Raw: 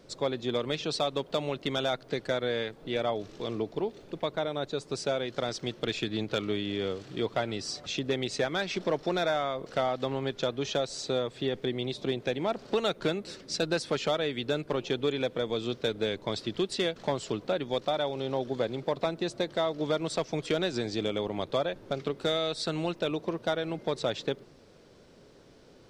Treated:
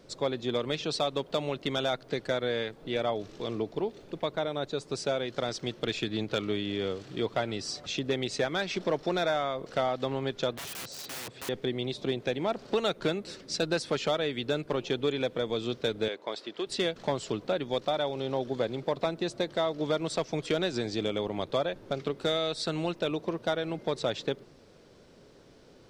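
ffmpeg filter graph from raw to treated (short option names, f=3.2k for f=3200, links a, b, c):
-filter_complex "[0:a]asettb=1/sr,asplit=3[a][b][c];[a]atrim=end=10.534[d];[b]atrim=start=10.53:end=11.49,asetpts=PTS-STARTPTS,afade=t=in:d=0.004:c=qsin,afade=t=out:st=0.956:d=0.004:c=qsin,highshelf=f=6k:g=-7.5,aeval=exprs='(mod(50.1*val(0)+1,2)-1)/50.1':c=same,highpass=75[e];[c]atrim=start=11.486[f];[d][e]acrossfade=d=0.004:c1=hsin:c2=qsin[g];[g][f]acrossfade=d=0.004:c1=qsin:c2=hsin,asettb=1/sr,asplit=3[h][i][j];[h]atrim=end=16.084[k];[i]atrim=start=16.08:end=16.67,asetpts=PTS-STARTPTS,afade=t=in:d=0.004:c=qsin,afade=t=out:st=0.586:d=0.004:c=qsin,highpass=440,highshelf=f=4.4k:g=-10[l];[j]atrim=start=16.666[m];[k][l]acrossfade=d=0.004:c1=hsin:c2=qsin[n];[n][m]acrossfade=d=0.004:c1=qsin:c2=hsin"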